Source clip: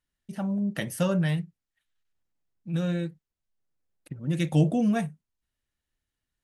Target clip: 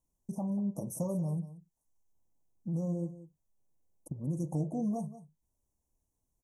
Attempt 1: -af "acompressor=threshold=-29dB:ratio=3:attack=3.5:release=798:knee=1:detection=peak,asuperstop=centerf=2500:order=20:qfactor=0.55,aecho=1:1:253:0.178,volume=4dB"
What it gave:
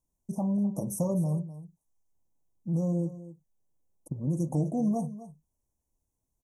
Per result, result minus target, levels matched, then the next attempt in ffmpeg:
echo 69 ms late; downward compressor: peak gain reduction −5.5 dB
-af "acompressor=threshold=-29dB:ratio=3:attack=3.5:release=798:knee=1:detection=peak,asuperstop=centerf=2500:order=20:qfactor=0.55,aecho=1:1:184:0.178,volume=4dB"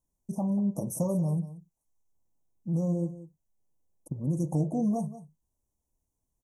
downward compressor: peak gain reduction −5.5 dB
-af "acompressor=threshold=-37dB:ratio=3:attack=3.5:release=798:knee=1:detection=peak,asuperstop=centerf=2500:order=20:qfactor=0.55,aecho=1:1:184:0.178,volume=4dB"

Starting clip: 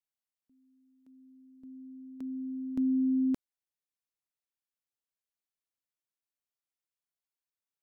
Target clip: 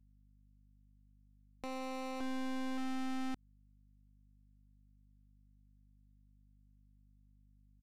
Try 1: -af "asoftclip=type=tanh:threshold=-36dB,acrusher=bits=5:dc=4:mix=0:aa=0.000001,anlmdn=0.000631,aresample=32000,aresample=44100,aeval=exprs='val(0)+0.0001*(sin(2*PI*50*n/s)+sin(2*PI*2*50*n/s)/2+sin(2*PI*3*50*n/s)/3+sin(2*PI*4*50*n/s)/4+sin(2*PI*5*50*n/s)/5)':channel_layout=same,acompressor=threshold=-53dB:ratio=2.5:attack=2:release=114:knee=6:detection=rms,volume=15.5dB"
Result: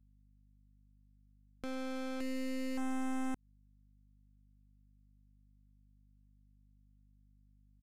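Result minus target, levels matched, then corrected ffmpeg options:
soft clipping: distortion −5 dB
-af "asoftclip=type=tanh:threshold=-46dB,acrusher=bits=5:dc=4:mix=0:aa=0.000001,anlmdn=0.000631,aresample=32000,aresample=44100,aeval=exprs='val(0)+0.0001*(sin(2*PI*50*n/s)+sin(2*PI*2*50*n/s)/2+sin(2*PI*3*50*n/s)/3+sin(2*PI*4*50*n/s)/4+sin(2*PI*5*50*n/s)/5)':channel_layout=same,acompressor=threshold=-53dB:ratio=2.5:attack=2:release=114:knee=6:detection=rms,volume=15.5dB"

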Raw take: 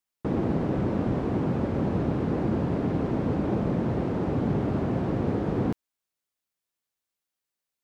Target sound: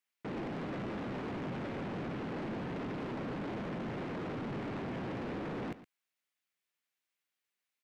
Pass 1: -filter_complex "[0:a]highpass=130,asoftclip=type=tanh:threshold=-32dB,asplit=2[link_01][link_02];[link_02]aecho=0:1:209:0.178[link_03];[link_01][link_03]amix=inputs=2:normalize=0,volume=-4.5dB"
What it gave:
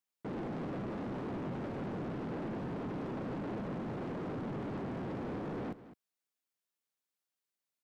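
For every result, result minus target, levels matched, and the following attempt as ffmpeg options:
echo 94 ms late; 2,000 Hz band −4.5 dB
-filter_complex "[0:a]highpass=130,asoftclip=type=tanh:threshold=-32dB,asplit=2[link_01][link_02];[link_02]aecho=0:1:115:0.178[link_03];[link_01][link_03]amix=inputs=2:normalize=0,volume=-4.5dB"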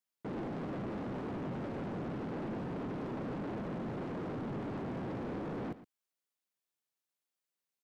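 2,000 Hz band −4.5 dB
-filter_complex "[0:a]highpass=130,equalizer=frequency=2200:width_type=o:width=1.4:gain=9.5,asoftclip=type=tanh:threshold=-32dB,asplit=2[link_01][link_02];[link_02]aecho=0:1:115:0.178[link_03];[link_01][link_03]amix=inputs=2:normalize=0,volume=-4.5dB"

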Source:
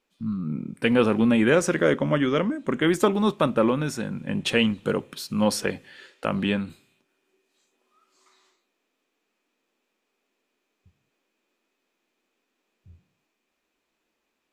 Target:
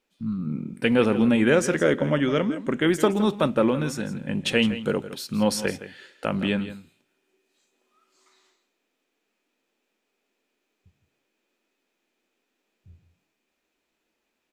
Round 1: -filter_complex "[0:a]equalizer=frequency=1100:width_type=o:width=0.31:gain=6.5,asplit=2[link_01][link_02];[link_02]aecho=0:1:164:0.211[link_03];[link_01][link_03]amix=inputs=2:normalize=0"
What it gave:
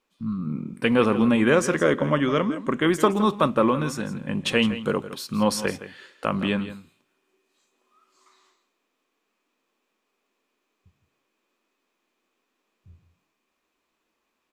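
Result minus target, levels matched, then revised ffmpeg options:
1,000 Hz band +4.5 dB
-filter_complex "[0:a]equalizer=frequency=1100:width_type=o:width=0.31:gain=-4.5,asplit=2[link_01][link_02];[link_02]aecho=0:1:164:0.211[link_03];[link_01][link_03]amix=inputs=2:normalize=0"

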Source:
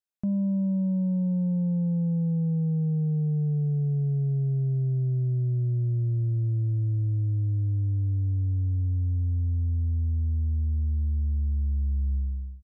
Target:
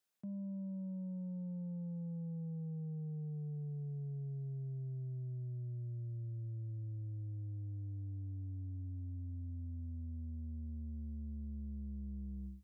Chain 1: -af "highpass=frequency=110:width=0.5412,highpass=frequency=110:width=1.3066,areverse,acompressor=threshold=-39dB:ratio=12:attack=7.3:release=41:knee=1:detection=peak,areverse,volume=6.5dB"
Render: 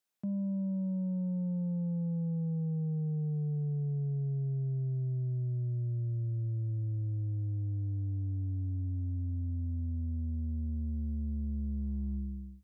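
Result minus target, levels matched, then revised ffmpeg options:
downward compressor: peak gain reduction −9 dB
-af "highpass=frequency=110:width=0.5412,highpass=frequency=110:width=1.3066,areverse,acompressor=threshold=-49dB:ratio=12:attack=7.3:release=41:knee=1:detection=peak,areverse,volume=6.5dB"

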